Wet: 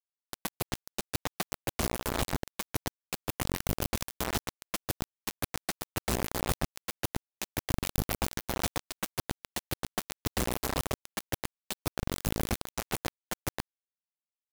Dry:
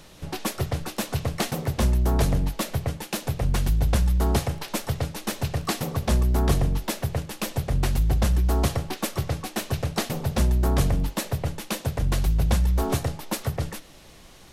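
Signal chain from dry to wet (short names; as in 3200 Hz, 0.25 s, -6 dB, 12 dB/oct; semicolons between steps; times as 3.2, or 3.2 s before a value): compressor 2:1, threshold -31 dBFS, peak gain reduction 9 dB; bit-crush 4-bit; gain -3 dB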